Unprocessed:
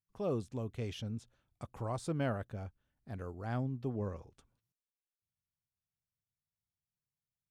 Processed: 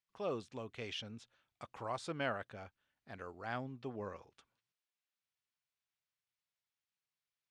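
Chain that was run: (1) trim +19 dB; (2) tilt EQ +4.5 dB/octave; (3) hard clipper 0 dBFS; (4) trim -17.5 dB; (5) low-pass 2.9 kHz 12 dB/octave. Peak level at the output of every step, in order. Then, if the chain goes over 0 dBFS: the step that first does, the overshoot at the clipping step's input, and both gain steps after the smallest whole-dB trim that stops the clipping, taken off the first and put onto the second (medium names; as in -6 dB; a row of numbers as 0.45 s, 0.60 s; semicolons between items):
-3.5 dBFS, -4.5 dBFS, -4.5 dBFS, -22.0 dBFS, -23.0 dBFS; nothing clips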